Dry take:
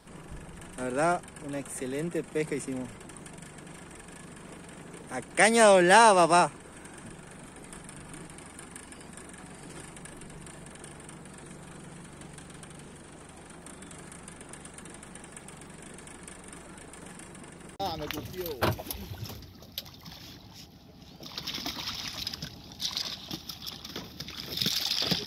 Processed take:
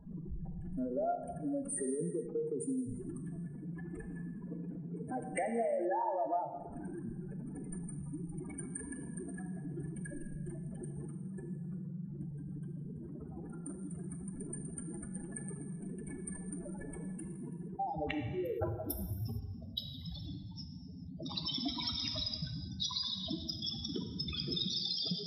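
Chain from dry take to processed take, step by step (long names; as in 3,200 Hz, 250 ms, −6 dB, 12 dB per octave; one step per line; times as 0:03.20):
expanding power law on the bin magnitudes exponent 3.9
downward compressor 10 to 1, threshold −37 dBFS, peak gain reduction 20.5 dB
reverb whose tail is shaped and stops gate 490 ms falling, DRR 5 dB
level +3 dB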